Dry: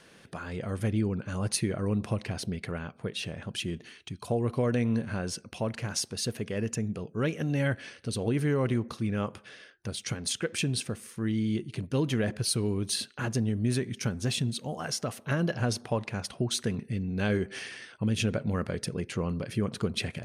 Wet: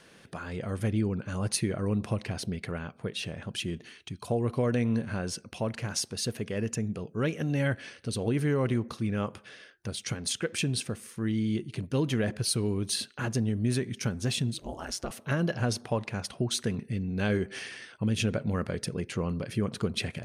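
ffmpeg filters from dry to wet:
ffmpeg -i in.wav -filter_complex "[0:a]asettb=1/sr,asplit=3[link_01][link_02][link_03];[link_01]atrim=end=14.544[link_04];[link_02]atrim=start=14.54:end=15.11,asetpts=PTS-STARTPTS,afade=type=in:duration=0.004:curve=qsin,afade=type=out:start_time=0.566:duration=0.004:curve=qsin,aeval=exprs='val(0)*sin(2*PI*94*n/s)':channel_layout=same[link_05];[link_03]atrim=start=15.106[link_06];[link_04][link_05]acrossfade=duration=0.004:curve1=hsin:curve2=qsin[link_07];[link_07][link_06]acrossfade=duration=0.004:curve1=qsin:curve2=hsin" out.wav

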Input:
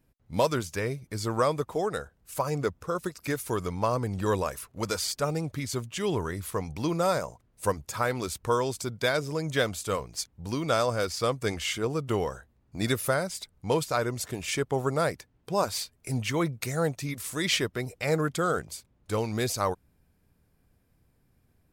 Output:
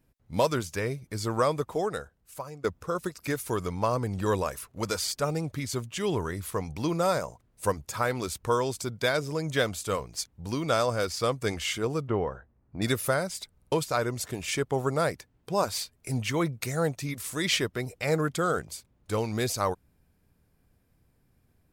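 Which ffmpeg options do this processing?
ffmpeg -i in.wav -filter_complex "[0:a]asettb=1/sr,asplit=3[link_01][link_02][link_03];[link_01]atrim=end=12.074[link_04];[link_02]atrim=start=12.07:end=12.82,asetpts=PTS-STARTPTS,afade=type=in:duration=0.004:curve=qsin,afade=type=out:start_time=0.746:duration=0.004:curve=qsin,lowpass=1700[link_05];[link_03]atrim=start=12.816[link_06];[link_04][link_05]acrossfade=duration=0.004:curve1=hsin:curve2=qsin[link_07];[link_07][link_06]acrossfade=duration=0.004:curve1=qsin:curve2=hsin,asplit=5[link_08][link_09][link_10][link_11][link_12];[link_08]atrim=end=2.64,asetpts=PTS-STARTPTS,afade=type=out:start_time=1.82:duration=0.82:silence=0.1[link_13];[link_09]atrim=start=2.64:end=13.622,asetpts=PTS-STARTPTS,afade=type=in:duration=0.004:curve=hsin:silence=0.1[link_14];[link_10]atrim=start=13.568:end=13.622[link_15];[link_11]atrim=start=13.568:end=13.622[link_16];[link_12]atrim=start=13.718[link_17];[link_13][link_14]concat=n=2:v=0:a=1[link_18];[link_18][link_15]acrossfade=duration=0.004:curve1=hsin:curve2=hsin[link_19];[link_19][link_16]acrossfade=duration=0.004:curve1=hsin:curve2=hsin[link_20];[link_20][link_17]acrossfade=duration=0.004:curve1=hsin:curve2=hsin" out.wav

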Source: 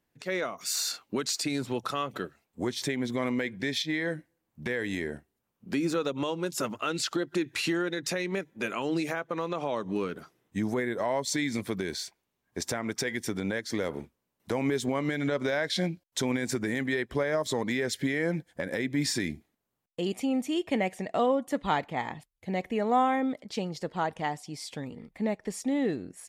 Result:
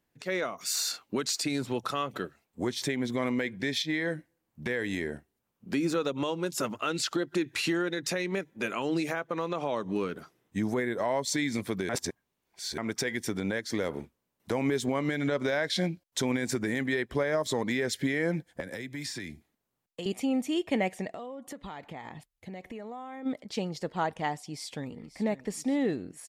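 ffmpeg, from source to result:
ffmpeg -i in.wav -filter_complex "[0:a]asettb=1/sr,asplit=3[link_01][link_02][link_03];[link_01]atrim=end=18.604[link_04];[link_02]atrim=start=18.6:end=20.06,asetpts=PTS-STARTPTS,afade=type=in:duration=0.004:curve=qsin,afade=type=out:start_time=1.456:duration=0.004:curve=qsin,acrossover=split=150|630|4500[link_05][link_06][link_07][link_08];[link_05]acompressor=threshold=-48dB:ratio=3[link_09];[link_06]acompressor=threshold=-45dB:ratio=3[link_10];[link_07]acompressor=threshold=-42dB:ratio=3[link_11];[link_08]acompressor=threshold=-43dB:ratio=3[link_12];[link_09][link_10][link_11][link_12]amix=inputs=4:normalize=0[link_13];[link_03]atrim=start=20.056[link_14];[link_04][link_13]acrossfade=duration=0.004:curve1=hsin:curve2=qsin[link_15];[link_15][link_14]acrossfade=duration=0.004:curve1=qsin:curve2=hsin,asplit=3[link_16][link_17][link_18];[link_16]afade=type=out:start_time=21.1:duration=0.02[link_19];[link_17]acompressor=threshold=-37dB:ratio=10:attack=3.2:release=140:knee=1:detection=peak,afade=type=in:start_time=21.1:duration=0.02,afade=type=out:start_time=23.25:duration=0.02[link_20];[link_18]afade=type=in:start_time=23.25:duration=0.02[link_21];[link_19][link_20][link_21]amix=inputs=3:normalize=0,asplit=2[link_22][link_23];[link_23]afade=type=in:start_time=24.49:duration=0.01,afade=type=out:start_time=25.16:duration=0.01,aecho=0:1:540|1080|1620|2160|2700|3240:0.188365|0.113019|0.0678114|0.0406868|0.0244121|0.0146473[link_24];[link_22][link_24]amix=inputs=2:normalize=0,asplit=3[link_25][link_26][link_27];[link_25]atrim=end=11.892[link_28];[link_26]atrim=start=11.888:end=12.782,asetpts=PTS-STARTPTS,areverse[link_29];[link_27]atrim=start=12.778[link_30];[link_28][link_29]acrossfade=duration=0.004:curve1=hsin:curve2=hsin[link_31];[link_31][link_30]acrossfade=duration=0.004:curve1=hsin:curve2=hsin" out.wav

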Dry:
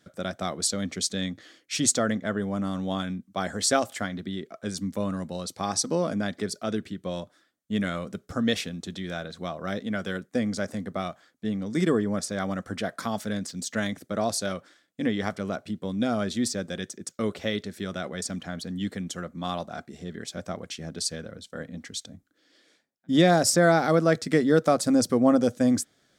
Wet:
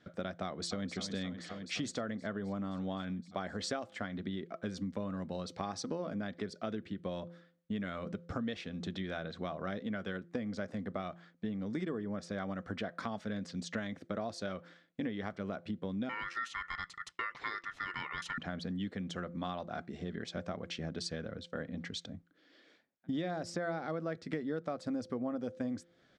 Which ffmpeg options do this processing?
ffmpeg -i in.wav -filter_complex "[0:a]asplit=2[link_01][link_02];[link_02]afade=type=in:start_time=0.45:duration=0.01,afade=type=out:start_time=0.93:duration=0.01,aecho=0:1:260|520|780|1040|1300|1560|1820|2080|2340|2600|2860|3120:0.266073|0.212858|0.170286|0.136229|0.108983|0.0871866|0.0697493|0.0557994|0.0446396|0.0357116|0.0285693|0.0228555[link_03];[link_01][link_03]amix=inputs=2:normalize=0,asettb=1/sr,asplit=3[link_04][link_05][link_06];[link_04]atrim=end=16.094[link_07];[link_05]atrim=start=16.09:end=18.38,asetpts=PTS-STARTPTS,afade=type=in:duration=0.004:curve=qsin,afade=type=out:start_time=2.286:duration=0.004:curve=qsin,aeval=exprs='val(0)*sin(2*PI*1600*n/s)':channel_layout=same[link_08];[link_06]atrim=start=18.376[link_09];[link_07][link_08]acrossfade=duration=0.004:curve1=hsin:curve2=qsin[link_10];[link_10][link_09]acrossfade=duration=0.004:curve1=qsin:curve2=hsin,lowpass=3400,bandreject=frequency=171.9:width_type=h:width=4,bandreject=frequency=343.8:width_type=h:width=4,bandreject=frequency=515.7:width_type=h:width=4,acompressor=threshold=-35dB:ratio=6" out.wav

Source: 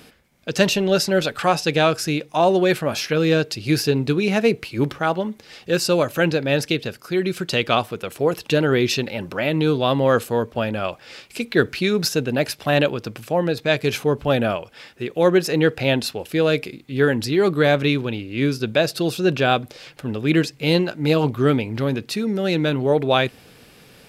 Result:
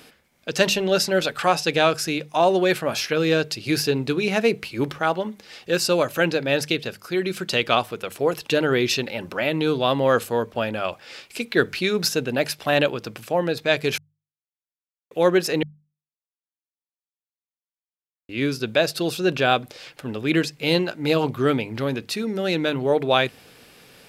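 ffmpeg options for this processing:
ffmpeg -i in.wav -filter_complex "[0:a]asplit=5[link_01][link_02][link_03][link_04][link_05];[link_01]atrim=end=13.98,asetpts=PTS-STARTPTS,afade=type=out:start_time=13.976:duration=0.004:curve=hsin[link_06];[link_02]atrim=start=13.98:end=15.11,asetpts=PTS-STARTPTS,volume=0[link_07];[link_03]atrim=start=15.11:end=15.63,asetpts=PTS-STARTPTS,afade=type=in:duration=0.004:curve=hsin,afade=type=out:start_time=0.516:duration=0.004:curve=hsin[link_08];[link_04]atrim=start=15.63:end=18.29,asetpts=PTS-STARTPTS,volume=0[link_09];[link_05]atrim=start=18.29,asetpts=PTS-STARTPTS,afade=type=in:duration=0.004:curve=hsin[link_10];[link_06][link_07][link_08][link_09][link_10]concat=n=5:v=0:a=1,lowshelf=frequency=300:gain=-6,bandreject=frequency=50:width_type=h:width=6,bandreject=frequency=100:width_type=h:width=6,bandreject=frequency=150:width_type=h:width=6,bandreject=frequency=200:width_type=h:width=6" out.wav

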